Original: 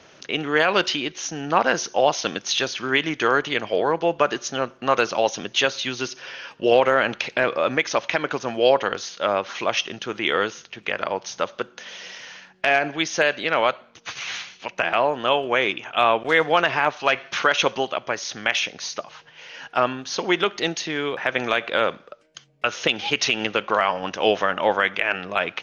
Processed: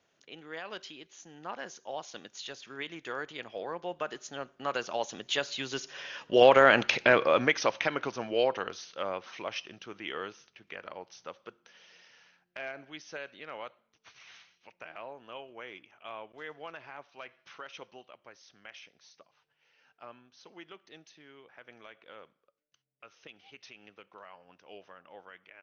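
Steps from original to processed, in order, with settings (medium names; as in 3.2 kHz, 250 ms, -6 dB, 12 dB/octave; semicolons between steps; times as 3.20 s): Doppler pass-by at 6.86 s, 16 m/s, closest 8.1 m; resampled via 16 kHz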